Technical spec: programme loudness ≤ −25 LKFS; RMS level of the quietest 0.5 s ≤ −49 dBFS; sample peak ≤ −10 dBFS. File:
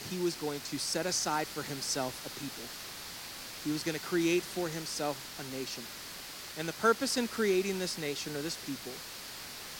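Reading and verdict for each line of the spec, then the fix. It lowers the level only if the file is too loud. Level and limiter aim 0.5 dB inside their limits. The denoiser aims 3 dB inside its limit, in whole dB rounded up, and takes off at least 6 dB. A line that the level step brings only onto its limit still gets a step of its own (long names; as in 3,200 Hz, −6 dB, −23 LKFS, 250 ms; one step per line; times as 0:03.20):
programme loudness −34.0 LKFS: in spec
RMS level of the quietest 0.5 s −45 dBFS: out of spec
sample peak −14.0 dBFS: in spec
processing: broadband denoise 7 dB, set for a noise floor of −45 dBFS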